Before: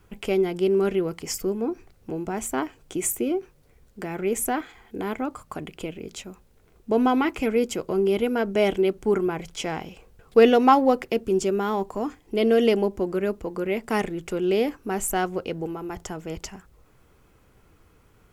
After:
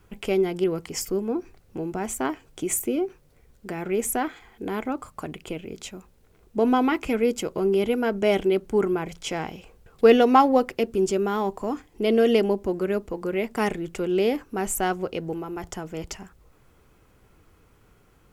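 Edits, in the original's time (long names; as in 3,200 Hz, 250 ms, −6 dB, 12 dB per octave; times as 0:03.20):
0:00.64–0:00.97: remove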